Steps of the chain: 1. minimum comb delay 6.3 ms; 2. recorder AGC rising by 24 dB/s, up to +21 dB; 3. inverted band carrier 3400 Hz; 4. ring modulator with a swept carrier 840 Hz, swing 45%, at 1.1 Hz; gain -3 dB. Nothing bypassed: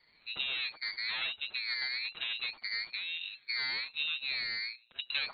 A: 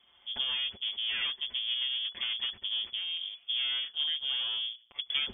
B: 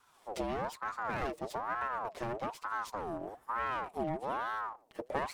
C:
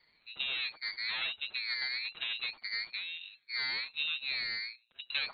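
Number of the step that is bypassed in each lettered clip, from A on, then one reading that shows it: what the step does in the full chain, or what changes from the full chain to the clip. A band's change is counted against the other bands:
4, loudness change +3.0 LU; 3, 4 kHz band -38.5 dB; 2, momentary loudness spread change +2 LU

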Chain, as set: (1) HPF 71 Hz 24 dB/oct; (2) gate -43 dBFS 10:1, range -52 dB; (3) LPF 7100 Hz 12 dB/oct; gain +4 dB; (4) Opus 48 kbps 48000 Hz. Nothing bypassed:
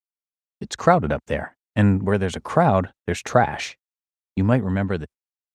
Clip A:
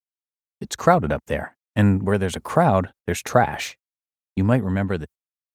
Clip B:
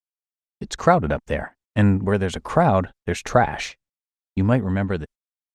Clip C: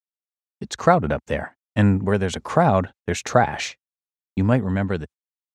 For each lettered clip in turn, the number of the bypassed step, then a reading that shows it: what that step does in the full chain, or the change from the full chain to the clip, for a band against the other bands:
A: 3, 8 kHz band +3.0 dB; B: 1, crest factor change -1.5 dB; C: 4, 8 kHz band +2.5 dB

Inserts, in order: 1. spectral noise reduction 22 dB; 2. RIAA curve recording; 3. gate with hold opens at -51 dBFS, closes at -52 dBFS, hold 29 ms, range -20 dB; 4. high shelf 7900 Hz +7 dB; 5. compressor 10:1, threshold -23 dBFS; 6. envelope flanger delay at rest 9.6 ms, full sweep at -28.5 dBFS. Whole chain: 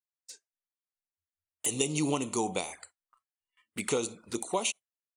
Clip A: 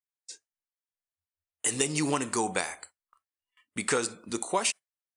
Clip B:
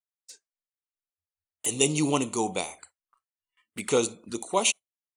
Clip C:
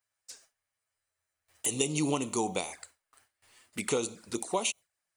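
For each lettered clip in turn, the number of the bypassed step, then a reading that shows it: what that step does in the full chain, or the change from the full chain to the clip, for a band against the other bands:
6, 2 kHz band +5.0 dB; 5, mean gain reduction 2.5 dB; 1, momentary loudness spread change +1 LU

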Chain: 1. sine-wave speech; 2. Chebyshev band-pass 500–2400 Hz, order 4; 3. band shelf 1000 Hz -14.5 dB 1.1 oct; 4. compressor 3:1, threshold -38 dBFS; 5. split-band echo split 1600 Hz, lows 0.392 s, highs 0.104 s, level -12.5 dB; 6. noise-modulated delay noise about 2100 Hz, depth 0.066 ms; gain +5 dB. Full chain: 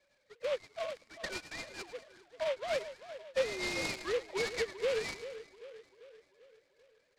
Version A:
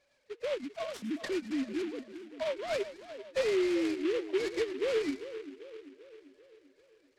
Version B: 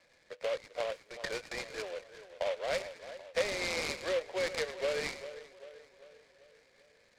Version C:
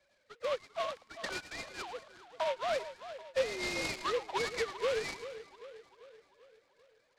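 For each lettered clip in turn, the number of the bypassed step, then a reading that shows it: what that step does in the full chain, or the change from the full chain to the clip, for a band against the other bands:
2, 250 Hz band +16.5 dB; 1, 250 Hz band -2.5 dB; 3, 1 kHz band +7.0 dB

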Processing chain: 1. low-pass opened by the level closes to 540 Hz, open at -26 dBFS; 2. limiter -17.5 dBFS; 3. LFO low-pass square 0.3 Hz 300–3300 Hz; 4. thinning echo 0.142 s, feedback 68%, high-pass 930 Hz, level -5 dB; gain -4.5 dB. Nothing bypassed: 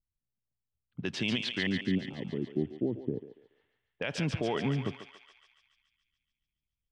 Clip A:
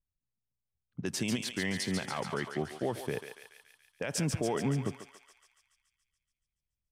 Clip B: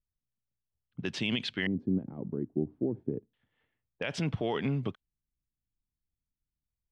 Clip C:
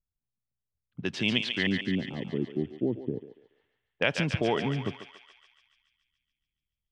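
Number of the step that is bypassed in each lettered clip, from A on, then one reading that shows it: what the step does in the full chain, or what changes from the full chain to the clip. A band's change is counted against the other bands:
3, 8 kHz band +13.0 dB; 4, momentary loudness spread change -2 LU; 2, mean gain reduction 2.0 dB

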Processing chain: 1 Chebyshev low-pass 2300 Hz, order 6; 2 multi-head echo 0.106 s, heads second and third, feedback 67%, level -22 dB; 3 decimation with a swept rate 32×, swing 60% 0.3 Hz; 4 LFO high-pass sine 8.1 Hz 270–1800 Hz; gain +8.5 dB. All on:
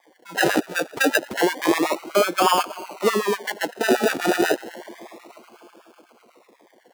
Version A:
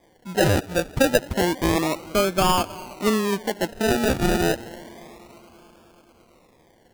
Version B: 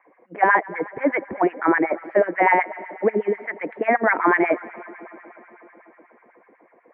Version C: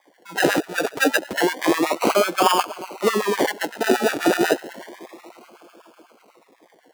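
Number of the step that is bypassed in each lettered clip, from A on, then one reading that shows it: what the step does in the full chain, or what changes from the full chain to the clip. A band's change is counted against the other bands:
4, 125 Hz band +14.0 dB; 3, crest factor change -3.5 dB; 1, momentary loudness spread change -1 LU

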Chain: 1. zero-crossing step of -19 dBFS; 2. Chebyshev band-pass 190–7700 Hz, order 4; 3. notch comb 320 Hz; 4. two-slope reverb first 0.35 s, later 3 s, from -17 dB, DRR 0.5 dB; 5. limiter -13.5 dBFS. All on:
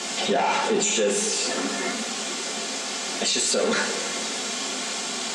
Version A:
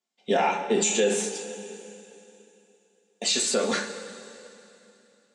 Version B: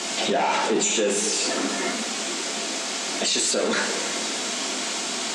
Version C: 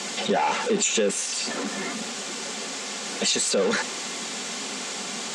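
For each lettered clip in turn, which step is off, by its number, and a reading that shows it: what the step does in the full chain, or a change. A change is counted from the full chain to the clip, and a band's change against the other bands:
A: 1, distortion -2 dB; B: 3, momentary loudness spread change -1 LU; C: 4, crest factor change +1.5 dB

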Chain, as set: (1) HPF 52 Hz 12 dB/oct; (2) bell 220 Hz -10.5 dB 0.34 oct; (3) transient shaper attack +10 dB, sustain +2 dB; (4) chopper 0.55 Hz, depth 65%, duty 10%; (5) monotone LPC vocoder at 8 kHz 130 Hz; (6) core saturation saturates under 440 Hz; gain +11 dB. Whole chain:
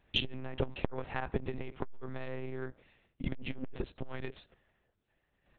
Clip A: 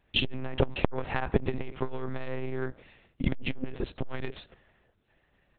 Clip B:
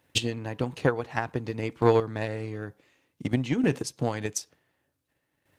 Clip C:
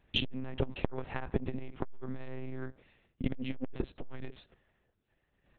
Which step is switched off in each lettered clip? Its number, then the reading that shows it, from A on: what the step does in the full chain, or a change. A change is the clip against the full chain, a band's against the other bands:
4, momentary loudness spread change +2 LU; 5, 4 kHz band -8.0 dB; 2, 250 Hz band +3.5 dB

